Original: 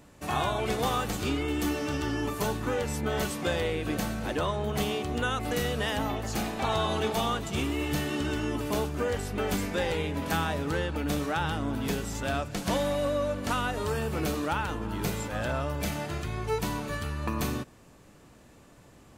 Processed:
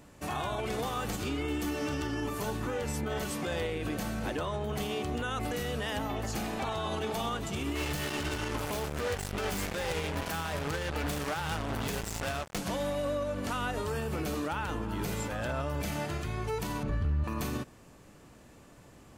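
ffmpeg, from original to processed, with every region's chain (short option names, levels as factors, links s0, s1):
-filter_complex "[0:a]asettb=1/sr,asplit=3[s0][s1][s2];[s0]atrim=end=7.754[s3];[s1]atrim=start=7.75:end=12.58,asetpts=PTS-STARTPTS,afade=t=in:d=0.004:c=qsin,afade=t=out:st=4.826:d=0.004:c=qsin,acrusher=bits=4:mix=0:aa=0.5,equalizer=f=270:t=o:w=0.87:g=-6[s4];[s2]atrim=start=12.576[s5];[s3][s4]acrossfade=d=0.004:c1=hsin:c2=qsin[s6];[s6][s5]acrossfade=d=0.004:c1=qsin:c2=hsin,asettb=1/sr,asplit=3[s7][s8][s9];[s7]atrim=end=16.834[s10];[s8]atrim=start=16.83:end=17.24,asetpts=PTS-STARTPTS,afade=t=in:d=0.004:c=qsin,afade=t=out:st=0.406:d=0.004:c=qsin,aemphasis=mode=reproduction:type=riaa,asoftclip=type=hard:threshold=0.15[s11];[s9]atrim=start=17.236[s12];[s10][s11]acrossfade=d=0.004:c1=hsin:c2=qsin[s13];[s13][s12]acrossfade=d=0.004:c1=qsin:c2=hsin,equalizer=f=3800:w=7.9:g=-2,alimiter=level_in=1.06:limit=0.0631:level=0:latency=1:release=70,volume=0.944"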